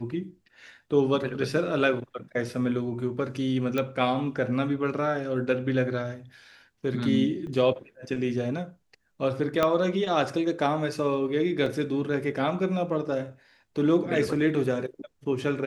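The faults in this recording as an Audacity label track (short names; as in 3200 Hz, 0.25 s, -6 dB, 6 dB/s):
3.780000	3.780000	pop -15 dBFS
7.470000	7.470000	gap 2.3 ms
9.630000	9.630000	pop -10 dBFS
11.660000	11.660000	gap 3.2 ms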